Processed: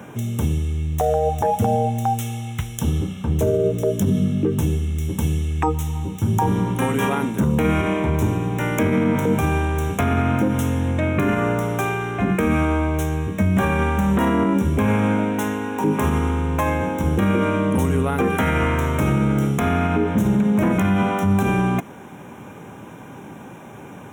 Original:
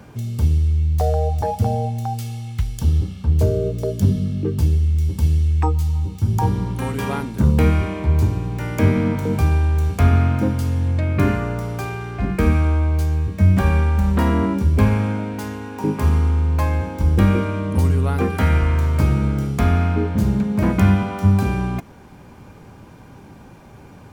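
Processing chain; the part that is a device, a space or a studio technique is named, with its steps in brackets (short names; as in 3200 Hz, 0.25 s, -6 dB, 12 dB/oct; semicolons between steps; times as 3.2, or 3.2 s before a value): PA system with an anti-feedback notch (HPF 160 Hz 12 dB/oct; Butterworth band-stop 4600 Hz, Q 2.3; limiter -17 dBFS, peak gain reduction 10 dB); gain +6.5 dB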